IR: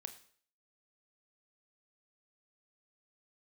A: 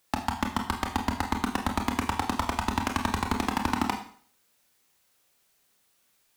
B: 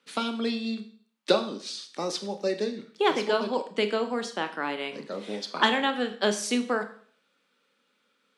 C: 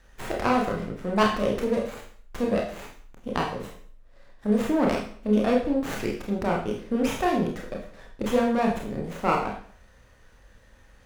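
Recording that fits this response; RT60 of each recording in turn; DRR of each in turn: B; 0.55 s, 0.55 s, 0.50 s; 3.0 dB, 7.5 dB, -1.0 dB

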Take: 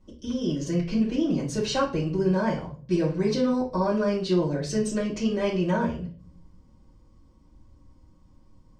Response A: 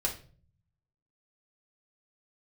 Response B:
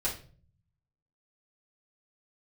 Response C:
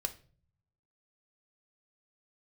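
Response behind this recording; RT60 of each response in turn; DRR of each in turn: B; 0.45 s, 0.45 s, 0.45 s; -1.5 dB, -7.0 dB, 6.5 dB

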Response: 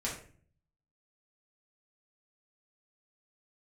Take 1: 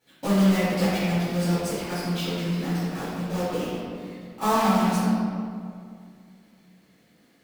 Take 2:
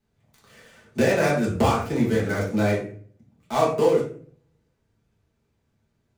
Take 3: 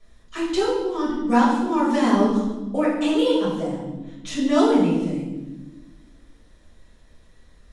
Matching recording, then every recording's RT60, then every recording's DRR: 2; 2.3 s, 0.45 s, 1.2 s; -15.5 dB, -6.0 dB, -9.0 dB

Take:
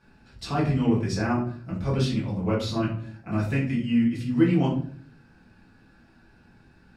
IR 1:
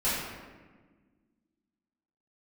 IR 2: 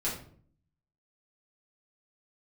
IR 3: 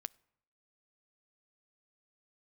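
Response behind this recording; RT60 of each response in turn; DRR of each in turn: 2; 1.4 s, 0.55 s, 0.70 s; -12.0 dB, -8.0 dB, 19.0 dB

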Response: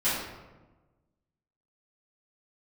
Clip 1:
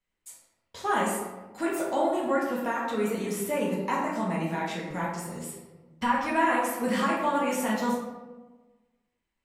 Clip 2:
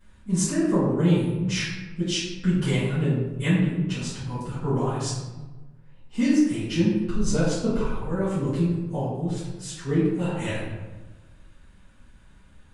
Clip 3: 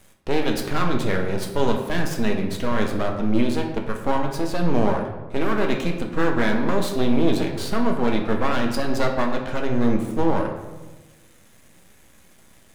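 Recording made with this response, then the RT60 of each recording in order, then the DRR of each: 2; 1.2 s, 1.2 s, 1.2 s; -6.5 dB, -15.0 dB, 2.0 dB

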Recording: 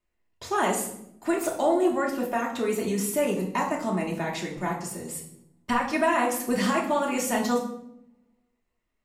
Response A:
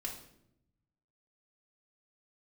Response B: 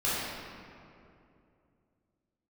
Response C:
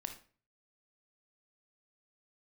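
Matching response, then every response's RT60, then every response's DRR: A; 0.75 s, 2.6 s, 0.40 s; -3.0 dB, -10.5 dB, 6.0 dB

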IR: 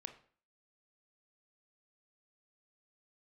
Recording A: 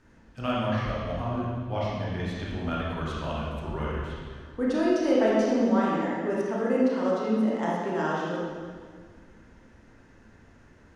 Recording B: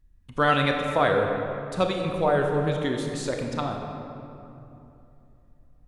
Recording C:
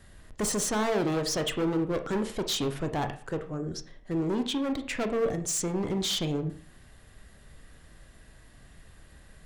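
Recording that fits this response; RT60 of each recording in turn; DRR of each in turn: C; 1.8 s, 2.9 s, 0.45 s; -6.0 dB, 2.0 dB, 7.5 dB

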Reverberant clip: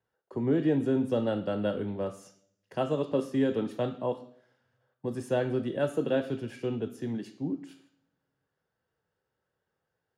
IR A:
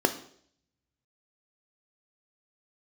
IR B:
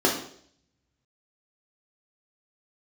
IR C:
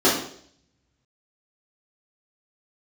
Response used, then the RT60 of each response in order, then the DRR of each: A; 0.60 s, 0.60 s, 0.60 s; 7.5 dB, -2.0 dB, -9.0 dB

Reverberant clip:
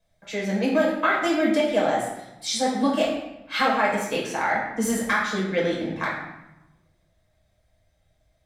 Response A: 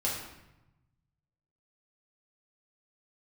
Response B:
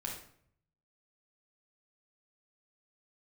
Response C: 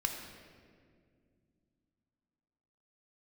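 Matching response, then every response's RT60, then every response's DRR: A; 0.95 s, 0.60 s, 2.1 s; -5.5 dB, -1.5 dB, 2.5 dB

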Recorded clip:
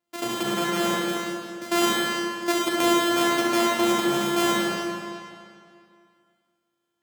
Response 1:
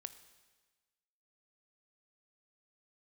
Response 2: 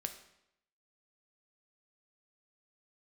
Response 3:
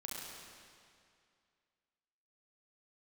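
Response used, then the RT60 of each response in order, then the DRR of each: 3; 1.3 s, 0.80 s, 2.3 s; 11.5 dB, 6.0 dB, -4.5 dB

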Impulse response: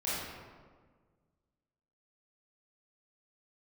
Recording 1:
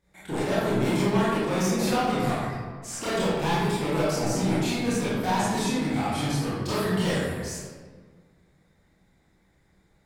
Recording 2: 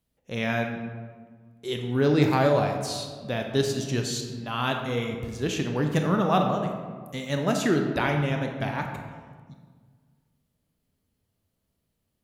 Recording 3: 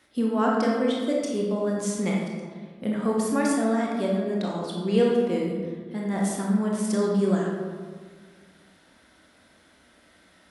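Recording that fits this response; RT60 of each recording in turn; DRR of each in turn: 1; 1.6 s, 1.6 s, 1.6 s; -10.5 dB, 3.0 dB, -2.5 dB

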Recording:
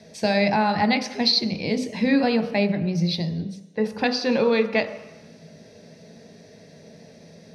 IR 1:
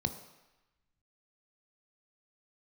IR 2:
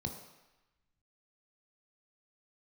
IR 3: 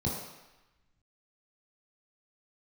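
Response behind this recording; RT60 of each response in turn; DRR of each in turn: 1; 1.0 s, 1.0 s, 1.0 s; 8.0 dB, 3.5 dB, -4.5 dB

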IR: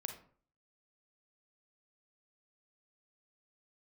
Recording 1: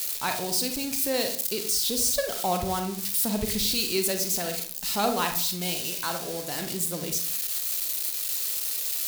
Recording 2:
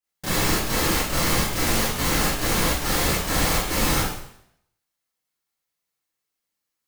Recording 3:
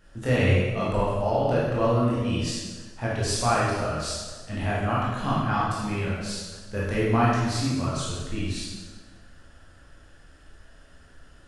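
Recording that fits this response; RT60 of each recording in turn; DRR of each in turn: 1; 0.50 s, 0.70 s, 1.4 s; 5.0 dB, -10.0 dB, -7.5 dB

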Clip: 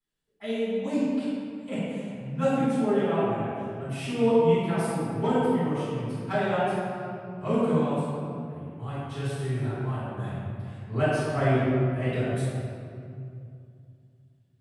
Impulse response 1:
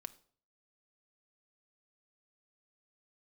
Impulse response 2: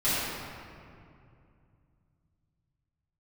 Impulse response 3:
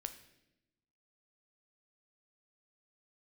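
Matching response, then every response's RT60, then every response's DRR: 2; 0.50 s, 2.5 s, 0.90 s; 10.5 dB, -14.5 dB, 8.0 dB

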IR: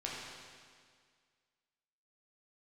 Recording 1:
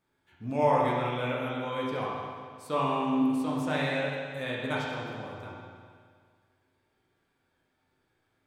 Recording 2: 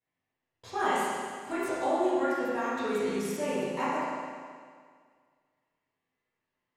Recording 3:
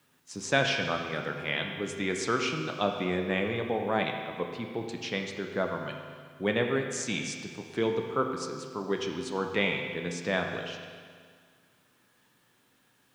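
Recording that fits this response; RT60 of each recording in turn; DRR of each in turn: 1; 1.9 s, 1.9 s, 1.9 s; -5.0 dB, -13.0 dB, 2.5 dB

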